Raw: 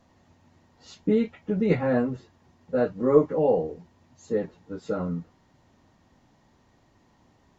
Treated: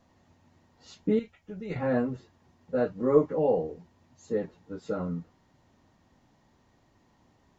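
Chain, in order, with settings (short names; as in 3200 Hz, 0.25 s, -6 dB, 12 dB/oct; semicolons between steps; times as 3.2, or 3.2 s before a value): 1.19–1.76 graphic EQ 125/250/500/1000/2000/4000 Hz -9/-10/-8/-7/-5/-4 dB; gain -3 dB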